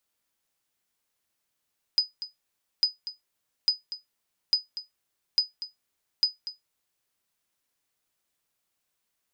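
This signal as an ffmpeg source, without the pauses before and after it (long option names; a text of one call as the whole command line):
ffmpeg -f lavfi -i "aevalsrc='0.224*(sin(2*PI*4980*mod(t,0.85))*exp(-6.91*mod(t,0.85)/0.16)+0.211*sin(2*PI*4980*max(mod(t,0.85)-0.24,0))*exp(-6.91*max(mod(t,0.85)-0.24,0)/0.16))':duration=5.1:sample_rate=44100" out.wav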